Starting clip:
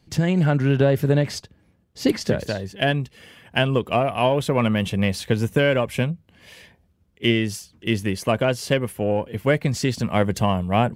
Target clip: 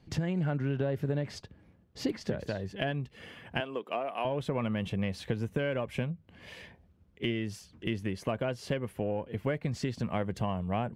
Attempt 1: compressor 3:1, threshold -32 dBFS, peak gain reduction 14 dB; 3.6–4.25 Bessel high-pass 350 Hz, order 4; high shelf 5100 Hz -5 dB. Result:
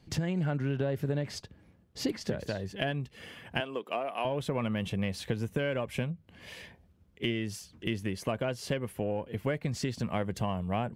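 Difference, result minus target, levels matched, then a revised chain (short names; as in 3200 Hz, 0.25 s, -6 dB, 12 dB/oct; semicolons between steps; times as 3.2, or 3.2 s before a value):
8000 Hz band +5.5 dB
compressor 3:1, threshold -32 dBFS, peak gain reduction 14 dB; 3.6–4.25 Bessel high-pass 350 Hz, order 4; high shelf 5100 Hz -13.5 dB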